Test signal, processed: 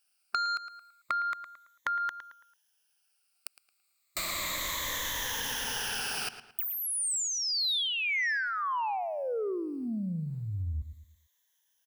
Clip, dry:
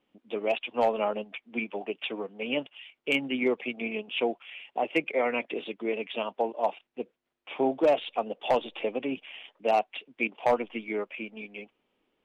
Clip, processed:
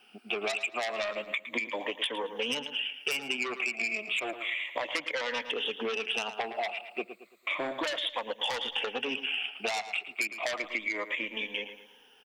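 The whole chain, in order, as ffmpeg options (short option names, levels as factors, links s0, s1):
-filter_complex "[0:a]afftfilt=real='re*pow(10,14/40*sin(2*PI*(1.1*log(max(b,1)*sr/1024/100)/log(2)-(-0.32)*(pts-256)/sr)))':imag='im*pow(10,14/40*sin(2*PI*(1.1*log(max(b,1)*sr/1024/100)/log(2)-(-0.32)*(pts-256)/sr)))':win_size=1024:overlap=0.75,asplit=2[s0][s1];[s1]aeval=exprs='0.355*sin(PI/2*4.47*val(0)/0.355)':c=same,volume=0.282[s2];[s0][s2]amix=inputs=2:normalize=0,tiltshelf=f=690:g=-9.5,acrossover=split=2500|5000[s3][s4][s5];[s3]acompressor=threshold=0.0562:ratio=4[s6];[s4]acompressor=threshold=0.0224:ratio=4[s7];[s5]acompressor=threshold=0.0224:ratio=4[s8];[s6][s7][s8]amix=inputs=3:normalize=0,asplit=2[s9][s10];[s10]adelay=111,lowpass=f=3900:p=1,volume=0.224,asplit=2[s11][s12];[s12]adelay=111,lowpass=f=3900:p=1,volume=0.36,asplit=2[s13][s14];[s14]adelay=111,lowpass=f=3900:p=1,volume=0.36,asplit=2[s15][s16];[s16]adelay=111,lowpass=f=3900:p=1,volume=0.36[s17];[s9][s11][s13][s15][s17]amix=inputs=5:normalize=0,acompressor=threshold=0.0251:ratio=2.5"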